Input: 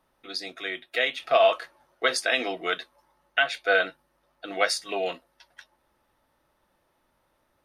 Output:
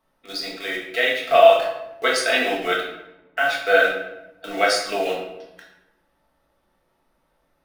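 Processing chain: 2.8–3.44 LPF 1700 Hz; in parallel at -5 dB: requantised 6-bit, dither none; on the sum: shoebox room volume 330 m³, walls mixed, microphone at 1.6 m; gain -3.5 dB

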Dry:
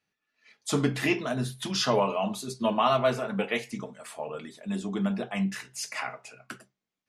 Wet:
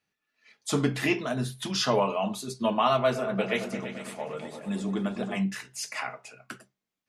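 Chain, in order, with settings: 3.04–5.38 repeats that get brighter 0.113 s, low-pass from 400 Hz, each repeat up 2 oct, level -6 dB

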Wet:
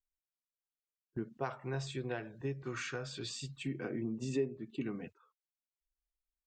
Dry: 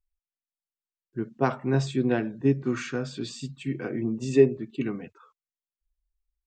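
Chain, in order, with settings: gate -47 dBFS, range -12 dB; 1.37–3.64 bell 240 Hz -14 dB 1.1 oct; compressor 2.5:1, threshold -36 dBFS, peak gain reduction 15.5 dB; gain -1.5 dB

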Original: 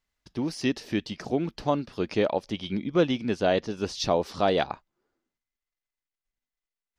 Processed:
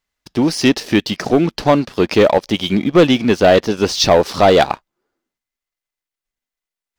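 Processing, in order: low shelf 190 Hz -5.5 dB; sample leveller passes 2; gain +8.5 dB

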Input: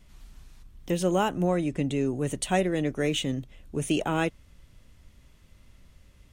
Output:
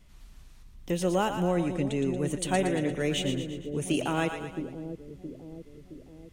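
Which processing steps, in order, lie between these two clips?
split-band echo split 530 Hz, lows 0.668 s, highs 0.116 s, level -7.5 dB; gain -2 dB

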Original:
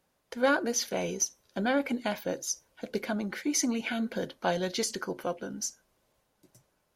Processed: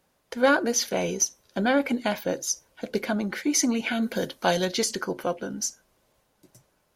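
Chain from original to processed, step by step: 4.01–4.64 high shelf 6800 Hz -> 3500 Hz +10.5 dB; gain +5 dB

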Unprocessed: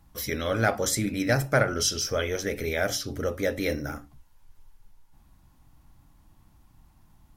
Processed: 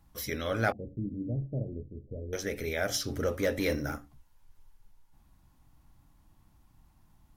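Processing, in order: 0.72–2.33 Gaussian blur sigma 22 samples; 2.94–3.96 sample leveller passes 1; gain -4.5 dB

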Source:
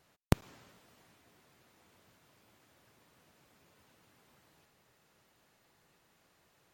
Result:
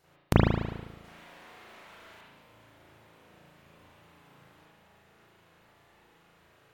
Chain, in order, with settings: notches 50/100/150/200/250 Hz; 1.04–2.21 overdrive pedal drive 31 dB, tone 4900 Hz, clips at -53.5 dBFS; spring tank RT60 1.1 s, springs 36 ms, chirp 40 ms, DRR -9 dB

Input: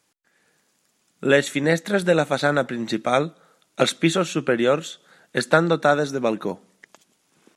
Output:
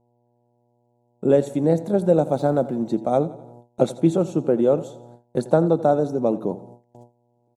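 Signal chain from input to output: 2.29–2.84 G.711 law mismatch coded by mu; buzz 120 Hz, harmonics 8, -46 dBFS -2 dB/oct; EQ curve 360 Hz 0 dB, 830 Hz -2 dB, 1800 Hz -26 dB, 8100 Hz -13 dB; feedback echo 85 ms, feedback 49%, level -17 dB; gate with hold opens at -36 dBFS; gain +2 dB

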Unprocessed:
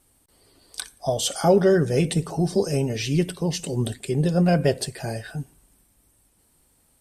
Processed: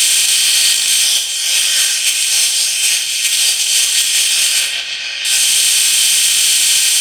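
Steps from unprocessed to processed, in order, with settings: per-bin compression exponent 0.2; Chebyshev high-pass 2600 Hz, order 3; sample leveller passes 2; negative-ratio compressor -23 dBFS, ratio -0.5; 4.6–5.25 air absorption 200 m; plate-style reverb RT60 0.76 s, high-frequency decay 0.7×, DRR 0 dB; maximiser +11 dB; gain -1 dB

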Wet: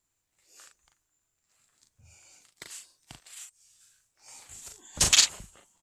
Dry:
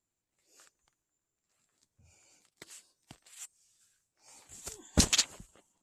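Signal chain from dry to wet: bell 290 Hz -7.5 dB 2.4 oct; 3.38–5.01 compressor 6:1, threshold -51 dBFS, peak gain reduction 26 dB; doubler 39 ms -5 dB; gain +7 dB

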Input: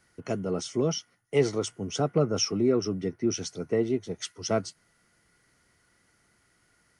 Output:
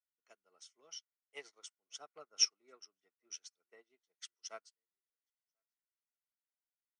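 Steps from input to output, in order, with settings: HPF 1100 Hz 12 dB/oct; echo 1.041 s -24 dB; upward expander 2.5:1, over -50 dBFS

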